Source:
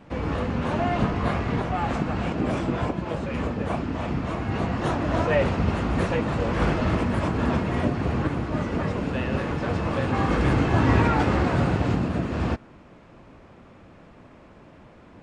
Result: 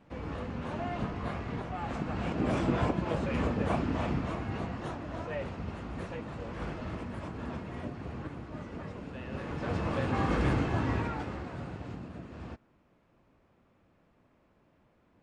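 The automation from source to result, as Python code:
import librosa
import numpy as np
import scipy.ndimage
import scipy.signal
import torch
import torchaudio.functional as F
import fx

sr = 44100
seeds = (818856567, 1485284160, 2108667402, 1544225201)

y = fx.gain(x, sr, db=fx.line((1.78, -11.0), (2.66, -2.5), (4.0, -2.5), (5.08, -15.0), (9.2, -15.0), (9.75, -6.0), (10.46, -6.0), (11.45, -18.0)))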